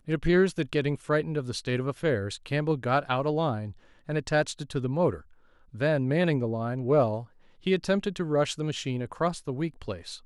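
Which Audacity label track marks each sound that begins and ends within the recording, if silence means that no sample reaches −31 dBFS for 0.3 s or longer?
4.090000	5.150000	sound
5.800000	7.200000	sound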